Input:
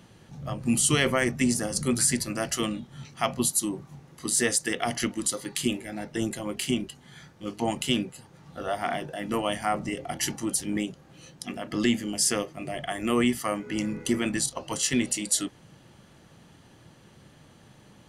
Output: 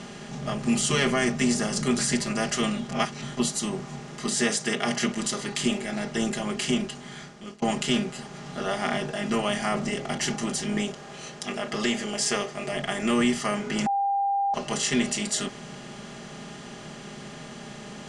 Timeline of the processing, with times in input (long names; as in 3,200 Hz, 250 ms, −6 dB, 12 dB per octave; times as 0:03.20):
0:02.89–0:03.37: reverse
0:04.27–0:05.09: high-pass filter 110 Hz 24 dB per octave
0:06.81–0:07.62: fade out
0:10.88–0:12.73: low shelf with overshoot 350 Hz −7 dB, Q 1.5
0:13.86–0:14.54: beep over 797 Hz −22 dBFS
whole clip: compressor on every frequency bin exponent 0.6; low-pass filter 7,700 Hz 24 dB per octave; comb filter 4.9 ms, depth 82%; level −4.5 dB